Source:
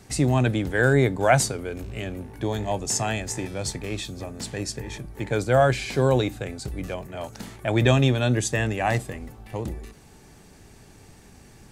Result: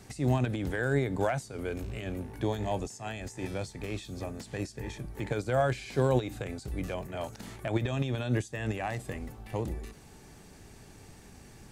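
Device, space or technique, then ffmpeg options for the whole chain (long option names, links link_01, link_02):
de-esser from a sidechain: -filter_complex "[0:a]asplit=2[link_01][link_02];[link_02]highpass=4200,apad=whole_len=516743[link_03];[link_01][link_03]sidechaincompress=threshold=-43dB:ratio=5:attack=0.73:release=98,volume=-2dB"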